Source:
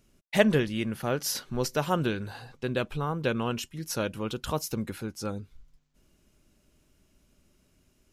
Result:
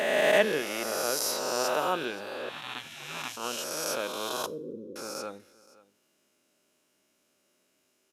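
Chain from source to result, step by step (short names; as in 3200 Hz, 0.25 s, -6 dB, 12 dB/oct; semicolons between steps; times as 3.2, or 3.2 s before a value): spectral swells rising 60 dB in 2.55 s; HPF 390 Hz 12 dB/oct; echo 0.524 s -21 dB; 2.49–3.37 spectral gate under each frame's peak -15 dB weak; 4.46–4.96 steep low-pass 540 Hz 96 dB/oct; two-slope reverb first 0.39 s, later 2.2 s, from -26 dB, DRR 17 dB; attack slew limiter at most 100 dB/s; gain -4 dB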